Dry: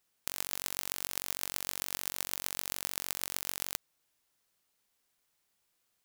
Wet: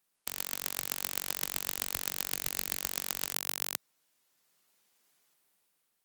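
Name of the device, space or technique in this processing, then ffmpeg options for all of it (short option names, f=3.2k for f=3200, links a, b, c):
video call: -filter_complex "[0:a]asettb=1/sr,asplit=3[a][b][c];[a]atrim=end=2.294[d];[b]atrim=start=2.29:end=2.81,asetpts=PTS-STARTPTS,afade=t=in:d=0.004:c=qsin,afade=t=out:st=0.516:d=0.004:c=qsin,asplit=2[e][f];[f]adelay=21,volume=-11dB[g];[e][g]amix=inputs=2:normalize=0,atrim=end_sample=22932[h];[c]atrim=start=2.806[i];[d][h]acrossfade=d=0.004:c1=hsin:c2=qsin[j];[j][i]acrossfade=d=0.004:c1=qsin:c2=hsin,highpass=f=130:w=0.5412,highpass=f=130:w=1.3066,dynaudnorm=f=140:g=9:m=6dB" -ar 48000 -c:a libopus -b:a 32k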